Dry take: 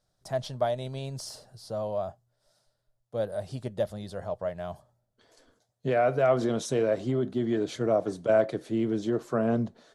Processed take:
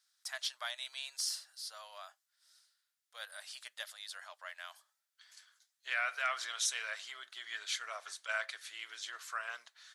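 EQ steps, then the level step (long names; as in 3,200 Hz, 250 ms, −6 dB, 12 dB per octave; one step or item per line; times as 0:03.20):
high-pass filter 1,500 Hz 24 dB per octave
+5.0 dB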